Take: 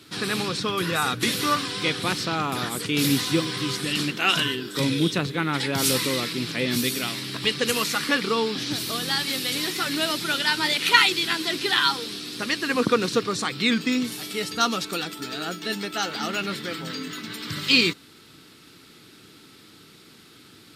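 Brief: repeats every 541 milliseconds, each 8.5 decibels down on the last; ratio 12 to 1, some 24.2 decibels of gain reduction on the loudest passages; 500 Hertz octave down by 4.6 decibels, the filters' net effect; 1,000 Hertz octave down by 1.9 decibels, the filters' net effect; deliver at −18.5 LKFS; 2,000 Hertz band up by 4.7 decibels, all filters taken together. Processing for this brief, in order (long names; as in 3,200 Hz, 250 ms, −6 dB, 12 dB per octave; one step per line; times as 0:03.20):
parametric band 500 Hz −5 dB
parametric band 1,000 Hz −5 dB
parametric band 2,000 Hz +7.5 dB
downward compressor 12 to 1, threshold −32 dBFS
repeating echo 541 ms, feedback 38%, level −8.5 dB
level +15.5 dB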